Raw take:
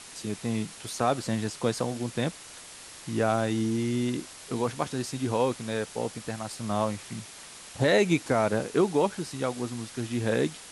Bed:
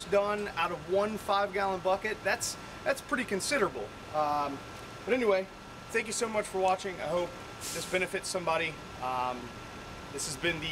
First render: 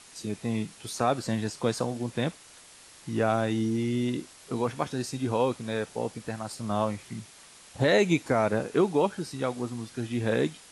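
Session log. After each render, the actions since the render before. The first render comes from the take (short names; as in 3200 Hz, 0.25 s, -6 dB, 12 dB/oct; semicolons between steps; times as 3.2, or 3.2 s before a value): noise print and reduce 6 dB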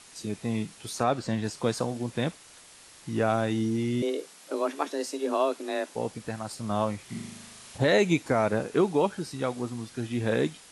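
1.03–1.44 air absorption 52 m; 4.02–5.95 frequency shift +140 Hz; 7.05–7.78 flutter echo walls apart 6.6 m, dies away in 0.99 s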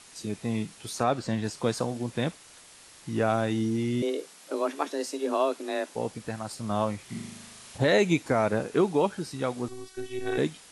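9.68–10.38 robotiser 377 Hz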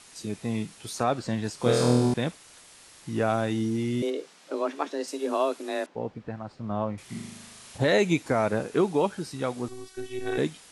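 1.57–2.14 flutter echo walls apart 4.2 m, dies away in 1.2 s; 4.1–5.08 air absorption 63 m; 5.86–6.98 tape spacing loss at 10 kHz 34 dB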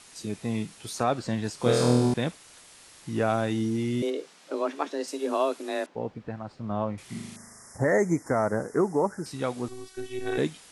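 7.36–9.26 Chebyshev band-stop 2000–5200 Hz, order 4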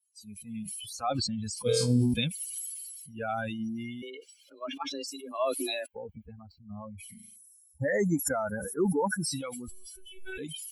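per-bin expansion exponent 3; sustainer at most 23 dB/s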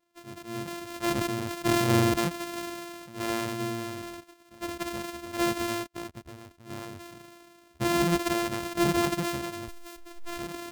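sample sorter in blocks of 128 samples; in parallel at -10 dB: overloaded stage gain 24 dB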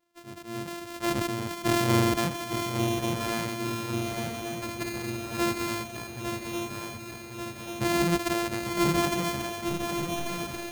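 swung echo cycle 1.139 s, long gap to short 3:1, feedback 63%, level -6.5 dB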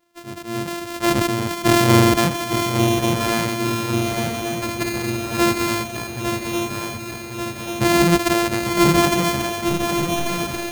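gain +9.5 dB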